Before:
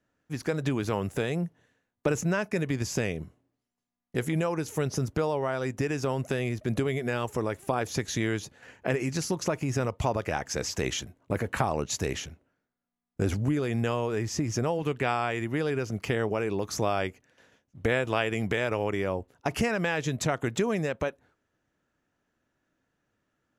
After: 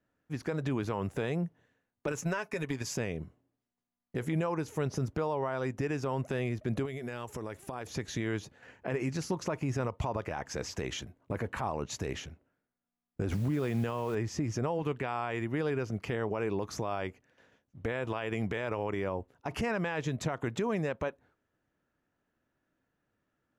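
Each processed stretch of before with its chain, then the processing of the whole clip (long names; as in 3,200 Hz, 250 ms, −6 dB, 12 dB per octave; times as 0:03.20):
0:02.07–0:02.97: spectral tilt +2 dB per octave + comb filter 7.3 ms, depth 46% + transient designer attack +10 dB, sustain −3 dB
0:06.85–0:07.87: high-shelf EQ 3,900 Hz +8.5 dB + downward compressor 10 to 1, threshold −31 dBFS
0:13.31–0:14.15: high-pass filter 43 Hz + parametric band 170 Hz +9 dB 0.26 octaves + bit-depth reduction 8 bits, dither triangular
whole clip: dynamic equaliser 990 Hz, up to +5 dB, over −44 dBFS, Q 3.3; brickwall limiter −19.5 dBFS; high-shelf EQ 4,500 Hz −9.5 dB; level −2.5 dB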